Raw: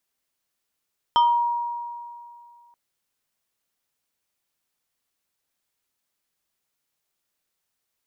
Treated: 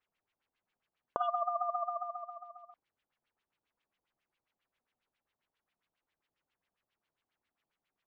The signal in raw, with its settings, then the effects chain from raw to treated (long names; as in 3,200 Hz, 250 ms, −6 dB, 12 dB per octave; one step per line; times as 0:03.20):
two-operator FM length 1.58 s, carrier 950 Hz, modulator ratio 2.29, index 0.68, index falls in 0.38 s exponential, decay 2.36 s, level −13 dB
downward compressor 6 to 1, threshold −32 dBFS
auto-filter low-pass sine 7.4 Hz 490–3,100 Hz
ring modulation 250 Hz